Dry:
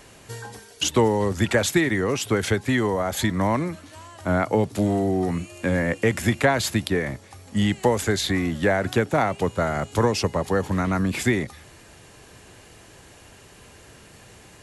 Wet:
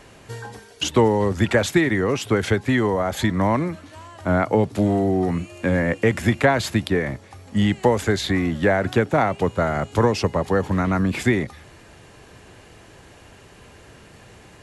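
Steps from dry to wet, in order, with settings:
high-shelf EQ 5,100 Hz −9.5 dB
level +2.5 dB

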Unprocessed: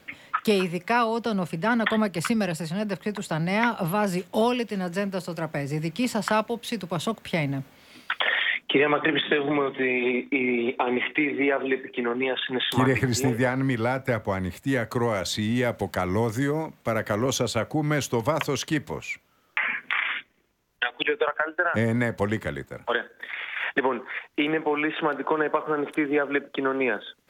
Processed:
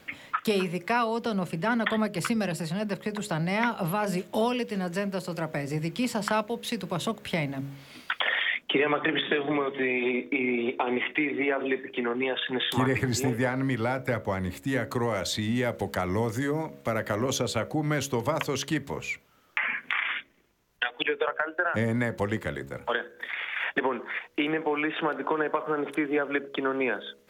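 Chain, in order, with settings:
hum removal 69.36 Hz, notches 9
in parallel at +2 dB: downward compressor, threshold −32 dBFS, peak gain reduction 14.5 dB
on the sum: level −5.5 dB

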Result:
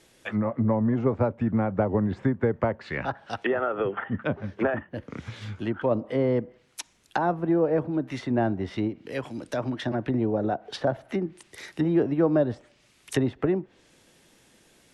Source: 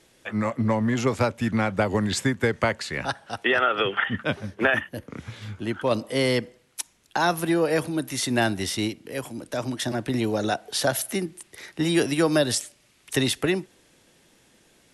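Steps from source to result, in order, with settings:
treble cut that deepens with the level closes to 870 Hz, closed at −22 dBFS

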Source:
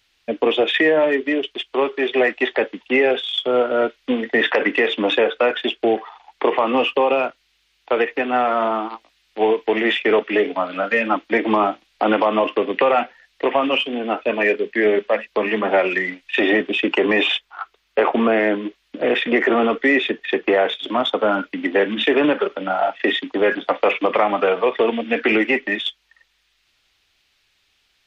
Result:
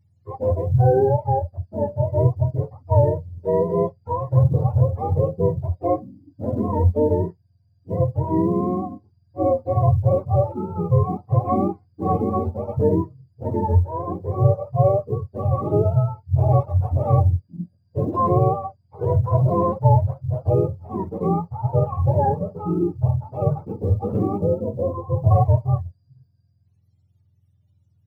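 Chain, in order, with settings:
frequency axis turned over on the octave scale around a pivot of 490 Hz
0:24.38–0:25.31: Chebyshev low-pass filter 640 Hz, order 2
floating-point word with a short mantissa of 6 bits
harmonic and percussive parts rebalanced percussive −12 dB

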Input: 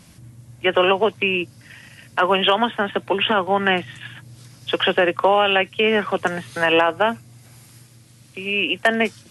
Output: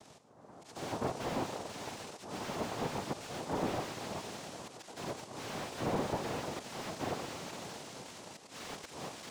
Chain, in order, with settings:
partials spread apart or drawn together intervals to 91%
flat-topped bell 730 Hz −16 dB 1.1 octaves
brickwall limiter −18 dBFS, peak gain reduction 9 dB
mains-hum notches 60/120/180/240/300/360/420/480/540/600 Hz
feedback delay with all-pass diffusion 599 ms, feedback 52%, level −12 dB
volume swells 559 ms
on a send at −9 dB: convolution reverb RT60 1.1 s, pre-delay 33 ms
on the sum: cochlear-implant simulation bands 2
slew-rate limiting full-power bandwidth 38 Hz
level −5 dB

